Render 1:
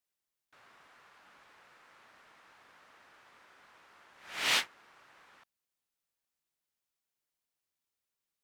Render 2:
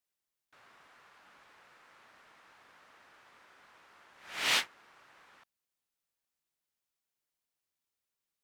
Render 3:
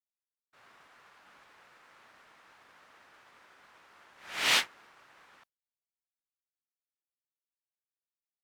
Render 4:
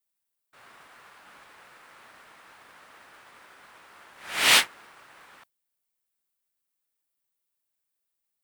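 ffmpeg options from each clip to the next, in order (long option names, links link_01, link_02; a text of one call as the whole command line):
ffmpeg -i in.wav -af anull out.wav
ffmpeg -i in.wav -af "agate=range=-33dB:threshold=-58dB:ratio=3:detection=peak,volume=3dB" out.wav
ffmpeg -i in.wav -af "aexciter=amount=2.5:drive=2.5:freq=8300,volume=7dB" out.wav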